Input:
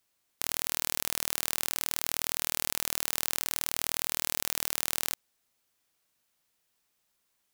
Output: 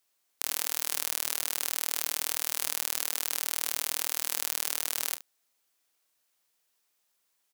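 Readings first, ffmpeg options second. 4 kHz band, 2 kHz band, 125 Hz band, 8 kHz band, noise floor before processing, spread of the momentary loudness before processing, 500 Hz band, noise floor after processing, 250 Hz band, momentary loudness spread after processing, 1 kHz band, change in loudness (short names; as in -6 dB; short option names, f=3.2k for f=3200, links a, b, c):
+0.5 dB, -0.5 dB, n/a, +1.5 dB, -77 dBFS, 1 LU, -1.5 dB, -76 dBFS, -5.0 dB, 1 LU, -0.5 dB, +1.0 dB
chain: -af "bass=f=250:g=-10,treble=f=4k:g=2,aecho=1:1:32|71:0.251|0.158,volume=-1dB"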